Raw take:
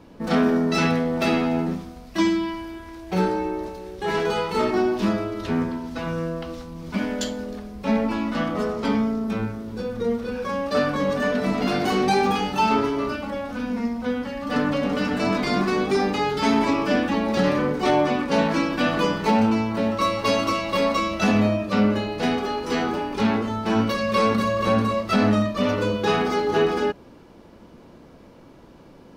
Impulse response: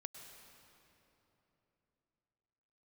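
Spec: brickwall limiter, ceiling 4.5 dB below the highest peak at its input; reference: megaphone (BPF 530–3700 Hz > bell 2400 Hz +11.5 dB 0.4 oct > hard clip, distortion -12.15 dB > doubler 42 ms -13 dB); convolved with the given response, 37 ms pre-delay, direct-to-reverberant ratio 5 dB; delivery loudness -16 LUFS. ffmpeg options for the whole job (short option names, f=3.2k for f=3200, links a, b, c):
-filter_complex "[0:a]alimiter=limit=-12.5dB:level=0:latency=1,asplit=2[a][b];[1:a]atrim=start_sample=2205,adelay=37[c];[b][c]afir=irnorm=-1:irlink=0,volume=-1dB[d];[a][d]amix=inputs=2:normalize=0,highpass=530,lowpass=3.7k,equalizer=f=2.4k:t=o:w=0.4:g=11.5,asoftclip=type=hard:threshold=-21.5dB,asplit=2[e][f];[f]adelay=42,volume=-13dB[g];[e][g]amix=inputs=2:normalize=0,volume=10dB"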